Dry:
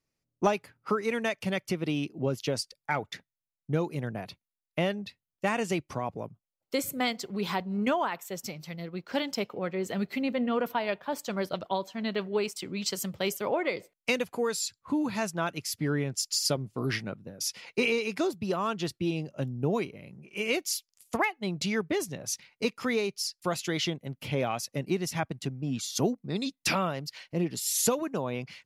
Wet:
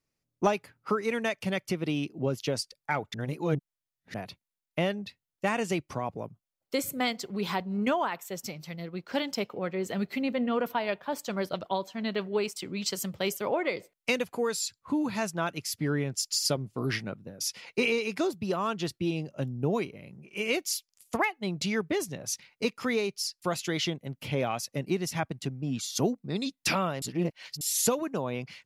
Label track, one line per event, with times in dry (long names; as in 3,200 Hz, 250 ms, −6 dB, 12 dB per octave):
3.140000	4.140000	reverse
27.020000	27.610000	reverse